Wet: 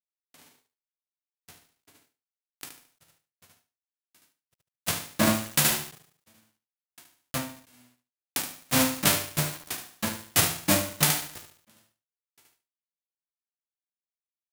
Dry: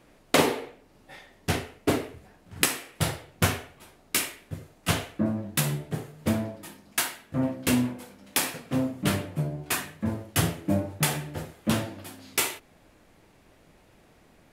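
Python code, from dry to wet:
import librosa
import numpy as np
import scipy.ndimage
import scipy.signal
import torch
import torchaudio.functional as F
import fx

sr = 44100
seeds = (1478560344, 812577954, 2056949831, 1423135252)

y = fx.envelope_flatten(x, sr, power=0.3)
y = np.where(np.abs(y) >= 10.0 ** (-28.5 / 20.0), y, 0.0)
y = fx.echo_feedback(y, sr, ms=73, feedback_pct=20, wet_db=-3)
y = fx.end_taper(y, sr, db_per_s=110.0)
y = F.gain(torch.from_numpy(y), 3.0).numpy()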